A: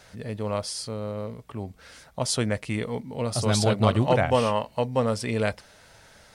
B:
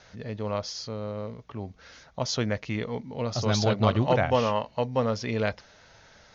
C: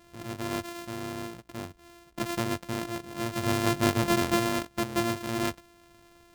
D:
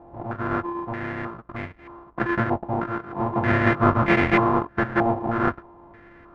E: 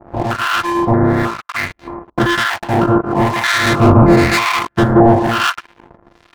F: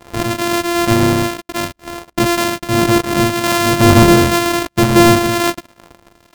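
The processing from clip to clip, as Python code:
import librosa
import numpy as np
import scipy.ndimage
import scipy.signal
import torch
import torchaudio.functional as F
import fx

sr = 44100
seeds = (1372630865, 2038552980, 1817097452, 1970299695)

y1 = scipy.signal.sosfilt(scipy.signal.cheby1(8, 1.0, 6700.0, 'lowpass', fs=sr, output='sos'), x)
y1 = y1 * librosa.db_to_amplitude(-1.0)
y2 = np.r_[np.sort(y1[:len(y1) // 128 * 128].reshape(-1, 128), axis=1).ravel(), y1[len(y1) // 128 * 128:]]
y2 = y2 * librosa.db_to_amplitude(-2.5)
y3 = fx.halfwave_hold(y2, sr)
y3 = fx.filter_held_lowpass(y3, sr, hz=3.2, low_hz=820.0, high_hz=2100.0)
y4 = fx.leveller(y3, sr, passes=5)
y4 = fx.harmonic_tremolo(y4, sr, hz=1.0, depth_pct=100, crossover_hz=1100.0)
y4 = y4 * librosa.db_to_amplitude(3.0)
y5 = np.r_[np.sort(y4[:len(y4) // 128 * 128].reshape(-1, 128), axis=1).ravel(), y4[len(y4) // 128 * 128:]]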